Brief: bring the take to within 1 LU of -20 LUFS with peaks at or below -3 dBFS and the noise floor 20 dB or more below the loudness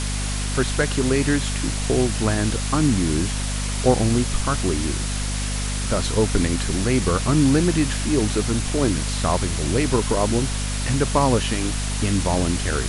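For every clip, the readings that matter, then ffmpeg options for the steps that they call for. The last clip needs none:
hum 50 Hz; harmonics up to 250 Hz; hum level -23 dBFS; noise floor -25 dBFS; noise floor target -42 dBFS; loudness -21.5 LUFS; peak -4.0 dBFS; loudness target -20.0 LUFS
-> -af "bandreject=f=50:t=h:w=6,bandreject=f=100:t=h:w=6,bandreject=f=150:t=h:w=6,bandreject=f=200:t=h:w=6,bandreject=f=250:t=h:w=6"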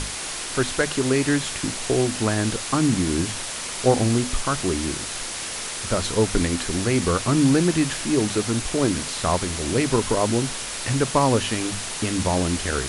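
hum none; noise floor -31 dBFS; noise floor target -43 dBFS
-> -af "afftdn=nr=12:nf=-31"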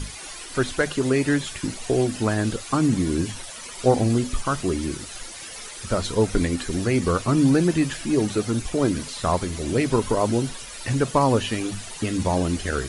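noise floor -38 dBFS; noise floor target -44 dBFS
-> -af "afftdn=nr=6:nf=-38"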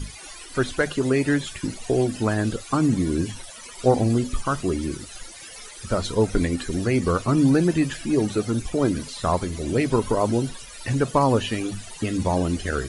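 noise floor -41 dBFS; noise floor target -44 dBFS
-> -af "afftdn=nr=6:nf=-41"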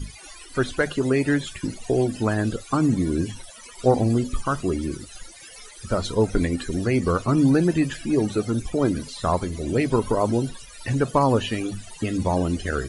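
noise floor -44 dBFS; loudness -23.5 LUFS; peak -5.5 dBFS; loudness target -20.0 LUFS
-> -af "volume=3.5dB,alimiter=limit=-3dB:level=0:latency=1"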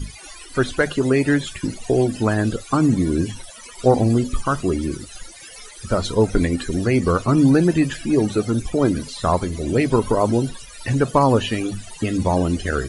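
loudness -20.0 LUFS; peak -3.0 dBFS; noise floor -40 dBFS

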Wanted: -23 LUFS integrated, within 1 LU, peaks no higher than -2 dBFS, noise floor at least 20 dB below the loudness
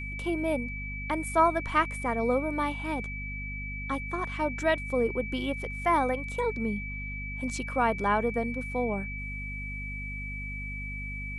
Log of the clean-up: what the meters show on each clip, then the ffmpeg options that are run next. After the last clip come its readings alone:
hum 50 Hz; harmonics up to 250 Hz; hum level -36 dBFS; steady tone 2300 Hz; tone level -37 dBFS; loudness -30.0 LUFS; peak -11.0 dBFS; loudness target -23.0 LUFS
-> -af "bandreject=f=50:t=h:w=6,bandreject=f=100:t=h:w=6,bandreject=f=150:t=h:w=6,bandreject=f=200:t=h:w=6,bandreject=f=250:t=h:w=6"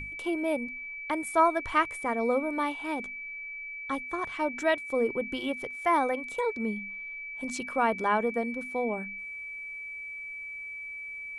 hum none; steady tone 2300 Hz; tone level -37 dBFS
-> -af "bandreject=f=2.3k:w=30"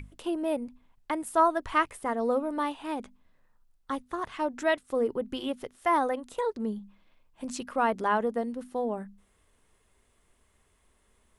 steady tone none; loudness -30.0 LUFS; peak -11.5 dBFS; loudness target -23.0 LUFS
-> -af "volume=7dB"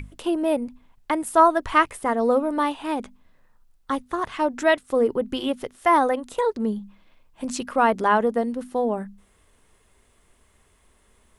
loudness -23.0 LUFS; peak -4.5 dBFS; noise floor -61 dBFS

